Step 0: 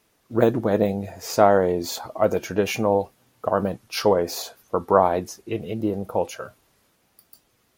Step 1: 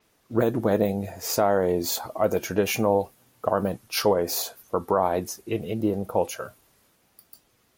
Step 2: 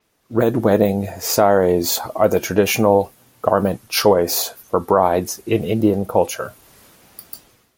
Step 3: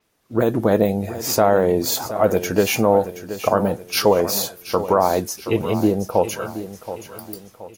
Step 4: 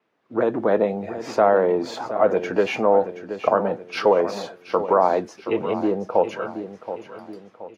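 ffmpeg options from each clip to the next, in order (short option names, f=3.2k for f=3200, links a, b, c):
-af "alimiter=limit=-9.5dB:level=0:latency=1:release=199,adynamicequalizer=threshold=0.00398:dfrequency=7600:dqfactor=0.7:tfrequency=7600:tqfactor=0.7:attack=5:release=100:ratio=0.375:range=4:mode=boostabove:tftype=highshelf"
-af "dynaudnorm=f=100:g=7:m=16dB,volume=-1dB"
-af "aecho=1:1:725|1450|2175|2900:0.237|0.102|0.0438|0.0189,volume=-2dB"
-filter_complex "[0:a]acrossover=split=360|1800[a][b][c];[a]asoftclip=type=tanh:threshold=-23dB[d];[d][b][c]amix=inputs=3:normalize=0,highpass=210,lowpass=2.3k"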